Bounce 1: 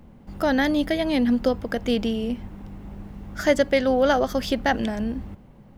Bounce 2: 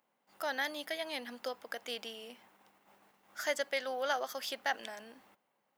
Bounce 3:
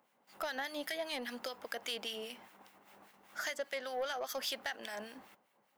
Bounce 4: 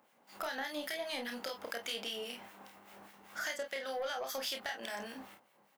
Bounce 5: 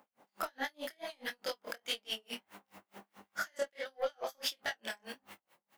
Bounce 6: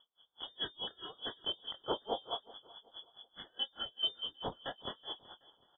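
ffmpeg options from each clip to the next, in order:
-af "highpass=790,agate=range=0.447:threshold=0.00178:ratio=16:detection=peak,highshelf=f=8000:g=8,volume=0.355"
-filter_complex "[0:a]acompressor=threshold=0.0126:ratio=10,acrossover=split=1500[s0][s1];[s0]aeval=exprs='val(0)*(1-0.7/2+0.7/2*cos(2*PI*5*n/s))':c=same[s2];[s1]aeval=exprs='val(0)*(1-0.7/2-0.7/2*cos(2*PI*5*n/s))':c=same[s3];[s2][s3]amix=inputs=2:normalize=0,asoftclip=type=tanh:threshold=0.0133,volume=2.66"
-af "acompressor=threshold=0.00631:ratio=2,aecho=1:1:30|49:0.562|0.316,volume=1.5"
-af "flanger=delay=18.5:depth=6.7:speed=1.5,aeval=exprs='val(0)*pow(10,-38*(0.5-0.5*cos(2*PI*4.7*n/s))/20)':c=same,volume=2.66"
-af "asuperstop=centerf=1100:order=8:qfactor=0.55,aecho=1:1:375|750|1125:0.1|0.036|0.013,lowpass=f=3100:t=q:w=0.5098,lowpass=f=3100:t=q:w=0.6013,lowpass=f=3100:t=q:w=0.9,lowpass=f=3100:t=q:w=2.563,afreqshift=-3600,volume=2.11"

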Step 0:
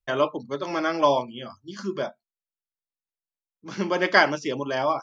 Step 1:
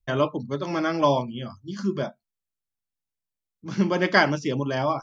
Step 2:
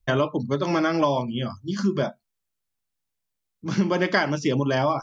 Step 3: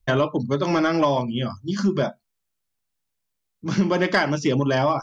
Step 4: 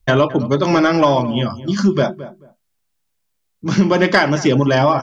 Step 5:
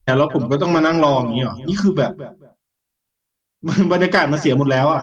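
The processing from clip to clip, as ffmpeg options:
-af "bass=f=250:g=13,treble=f=4000:g=1,volume=0.841"
-af "acompressor=threshold=0.0631:ratio=6,volume=2"
-af "asoftclip=type=tanh:threshold=0.316,volume=1.33"
-filter_complex "[0:a]asplit=2[s0][s1];[s1]adelay=218,lowpass=f=1400:p=1,volume=0.188,asplit=2[s2][s3];[s3]adelay=218,lowpass=f=1400:p=1,volume=0.19[s4];[s0][s2][s4]amix=inputs=3:normalize=0,volume=2.11"
-af "volume=0.891" -ar 48000 -c:a libopus -b:a 24k

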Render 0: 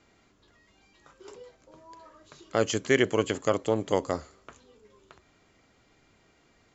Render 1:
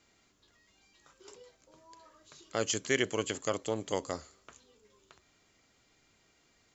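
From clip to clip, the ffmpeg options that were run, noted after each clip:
-af "highshelf=f=3000:g=11.5,volume=0.398"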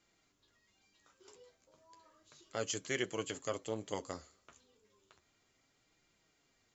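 -af "flanger=delay=5.5:depth=6.7:regen=-42:speed=0.33:shape=triangular,volume=0.75"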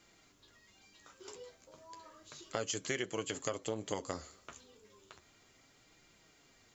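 -af "acompressor=threshold=0.00708:ratio=6,volume=2.99"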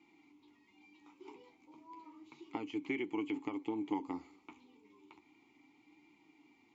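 -filter_complex "[0:a]acrossover=split=3500[s0][s1];[s1]acompressor=threshold=0.00158:ratio=4:attack=1:release=60[s2];[s0][s2]amix=inputs=2:normalize=0,asplit=3[s3][s4][s5];[s3]bandpass=f=300:t=q:w=8,volume=1[s6];[s4]bandpass=f=870:t=q:w=8,volume=0.501[s7];[s5]bandpass=f=2240:t=q:w=8,volume=0.355[s8];[s6][s7][s8]amix=inputs=3:normalize=0,volume=4.22"

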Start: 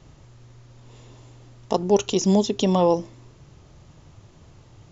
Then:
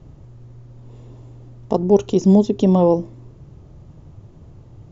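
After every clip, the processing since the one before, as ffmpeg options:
-af "tiltshelf=f=940:g=8.5,volume=0.891"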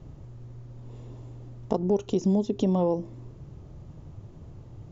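-af "acompressor=threshold=0.0891:ratio=3,volume=0.794"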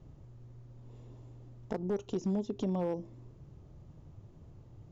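-af "volume=7.08,asoftclip=hard,volume=0.141,volume=0.376"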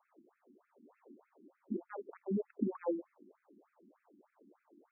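-af "afftfilt=real='re*between(b*sr/1024,250*pow(1900/250,0.5+0.5*sin(2*PI*3.3*pts/sr))/1.41,250*pow(1900/250,0.5+0.5*sin(2*PI*3.3*pts/sr))*1.41)':imag='im*between(b*sr/1024,250*pow(1900/250,0.5+0.5*sin(2*PI*3.3*pts/sr))/1.41,250*pow(1900/250,0.5+0.5*sin(2*PI*3.3*pts/sr))*1.41)':win_size=1024:overlap=0.75,volume=1.58"

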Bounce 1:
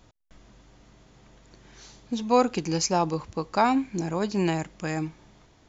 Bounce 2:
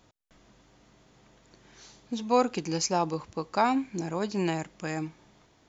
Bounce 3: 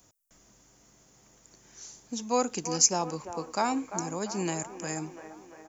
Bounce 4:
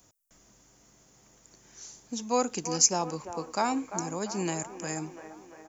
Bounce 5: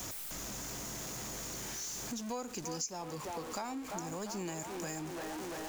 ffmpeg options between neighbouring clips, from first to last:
-af "lowshelf=f=80:g=-11,volume=0.75"
-filter_complex "[0:a]acrossover=split=260|2500[s0][s1][s2];[s1]aecho=1:1:344|688|1032|1376|1720|2064|2408:0.335|0.198|0.117|0.0688|0.0406|0.0239|0.0141[s3];[s2]aexciter=amount=8.1:drive=2.6:freq=5500[s4];[s0][s3][s4]amix=inputs=3:normalize=0,volume=0.668"
-af anull
-af "aeval=exprs='val(0)+0.5*0.0237*sgn(val(0))':c=same,acompressor=threshold=0.02:ratio=4,volume=0.631"

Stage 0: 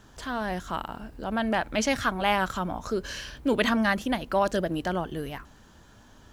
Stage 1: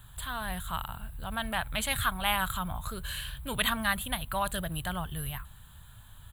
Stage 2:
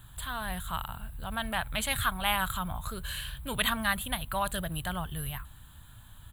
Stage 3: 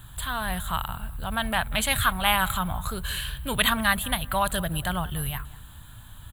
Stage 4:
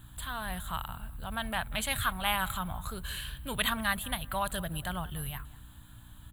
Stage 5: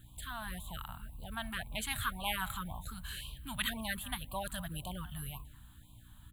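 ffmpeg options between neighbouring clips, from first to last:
-af "firequalizer=gain_entry='entry(130,0);entry(210,-16);entry(310,-25);entry(690,-14);entry(1100,-7);entry(2100,-9);entry(3800,-1);entry(5500,-28);entry(7800,2);entry(11000,9)':delay=0.05:min_phase=1,volume=1.88"
-af "aeval=exprs='val(0)+0.000794*(sin(2*PI*60*n/s)+sin(2*PI*2*60*n/s)/2+sin(2*PI*3*60*n/s)/3+sin(2*PI*4*60*n/s)/4+sin(2*PI*5*60*n/s)/5)':c=same"
-filter_complex "[0:a]asplit=2[s0][s1];[s1]adelay=187,lowpass=f=2000:p=1,volume=0.112,asplit=2[s2][s3];[s3]adelay=187,lowpass=f=2000:p=1,volume=0.36,asplit=2[s4][s5];[s5]adelay=187,lowpass=f=2000:p=1,volume=0.36[s6];[s0][s2][s4][s6]amix=inputs=4:normalize=0,volume=2"
-af "aeval=exprs='val(0)+0.00355*(sin(2*PI*60*n/s)+sin(2*PI*2*60*n/s)/2+sin(2*PI*3*60*n/s)/3+sin(2*PI*4*60*n/s)/4+sin(2*PI*5*60*n/s)/5)':c=same,volume=0.422"
-af "afftfilt=real='re*(1-between(b*sr/1024,390*pow(1700/390,0.5+0.5*sin(2*PI*1.9*pts/sr))/1.41,390*pow(1700/390,0.5+0.5*sin(2*PI*1.9*pts/sr))*1.41))':imag='im*(1-between(b*sr/1024,390*pow(1700/390,0.5+0.5*sin(2*PI*1.9*pts/sr))/1.41,390*pow(1700/390,0.5+0.5*sin(2*PI*1.9*pts/sr))*1.41))':win_size=1024:overlap=0.75,volume=0.562"

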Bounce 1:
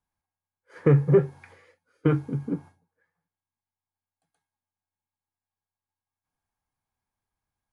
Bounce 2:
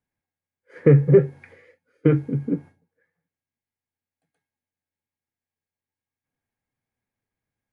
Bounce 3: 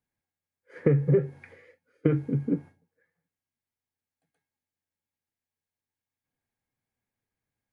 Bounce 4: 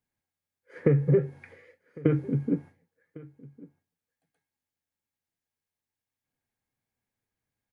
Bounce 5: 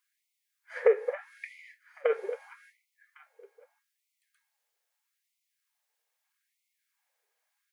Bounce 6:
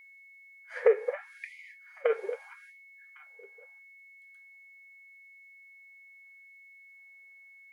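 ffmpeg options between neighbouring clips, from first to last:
-af "equalizer=f=125:t=o:w=1:g=8,equalizer=f=250:t=o:w=1:g=8,equalizer=f=500:t=o:w=1:g=10,equalizer=f=1000:t=o:w=1:g=-5,equalizer=f=2000:t=o:w=1:g=11,volume=0.531"
-af "acompressor=threshold=0.158:ratio=6,volume=0.794"
-af "aecho=1:1:1104:0.0841"
-af "acompressor=threshold=0.0708:ratio=3,afftfilt=real='re*gte(b*sr/1024,380*pow(2000/380,0.5+0.5*sin(2*PI*0.79*pts/sr)))':imag='im*gte(b*sr/1024,380*pow(2000/380,0.5+0.5*sin(2*PI*0.79*pts/sr)))':win_size=1024:overlap=0.75,volume=2.82"
-af "aeval=exprs='val(0)+0.00251*sin(2*PI*2200*n/s)':c=same"

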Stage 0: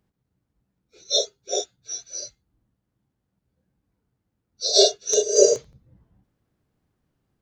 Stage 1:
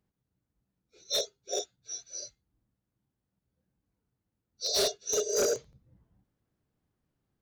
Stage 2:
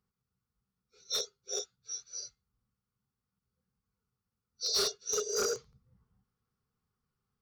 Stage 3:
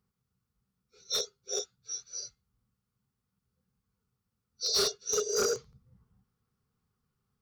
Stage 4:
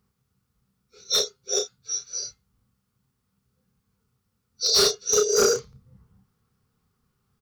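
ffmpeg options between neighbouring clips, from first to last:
-af "volume=6.68,asoftclip=hard,volume=0.15,volume=0.447"
-af "superequalizer=6b=0.251:8b=0.316:10b=2.51:14b=1.78,volume=0.596"
-af "equalizer=f=140:w=0.39:g=3.5,volume=1.26"
-filter_complex "[0:a]asplit=2[s0][s1];[s1]adelay=31,volume=0.398[s2];[s0][s2]amix=inputs=2:normalize=0,volume=2.51"

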